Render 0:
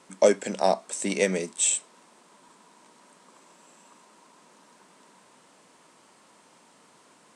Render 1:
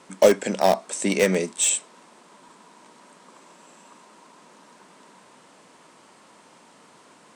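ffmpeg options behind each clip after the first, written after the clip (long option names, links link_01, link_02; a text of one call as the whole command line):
ffmpeg -i in.wav -filter_complex "[0:a]highshelf=frequency=6000:gain=-5,asplit=2[link_01][link_02];[link_02]aeval=exprs='(mod(7.08*val(0)+1,2)-1)/7.08':channel_layout=same,volume=-11.5dB[link_03];[link_01][link_03]amix=inputs=2:normalize=0,volume=3.5dB" out.wav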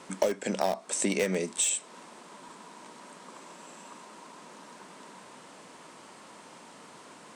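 ffmpeg -i in.wav -af "acompressor=threshold=-28dB:ratio=5,volume=2.5dB" out.wav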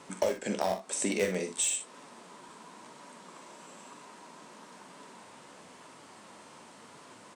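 ffmpeg -i in.wav -af "equalizer=frequency=93:width_type=o:width=0.6:gain=8,flanger=delay=6.9:depth=7.2:regen=59:speed=1:shape=sinusoidal,aecho=1:1:44|60:0.299|0.282,volume=1.5dB" out.wav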